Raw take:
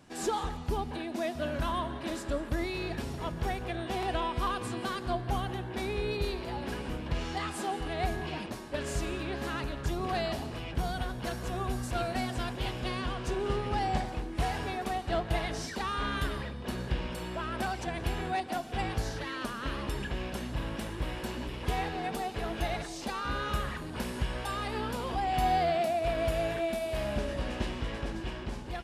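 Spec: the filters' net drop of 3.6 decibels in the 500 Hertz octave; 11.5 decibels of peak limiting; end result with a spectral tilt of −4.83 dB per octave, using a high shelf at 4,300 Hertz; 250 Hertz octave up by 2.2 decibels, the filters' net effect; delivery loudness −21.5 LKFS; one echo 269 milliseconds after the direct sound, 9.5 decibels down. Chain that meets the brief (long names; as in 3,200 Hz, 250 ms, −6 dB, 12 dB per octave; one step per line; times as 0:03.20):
parametric band 250 Hz +5 dB
parametric band 500 Hz −7 dB
high-shelf EQ 4,300 Hz −5.5 dB
brickwall limiter −27.5 dBFS
single-tap delay 269 ms −9.5 dB
level +15.5 dB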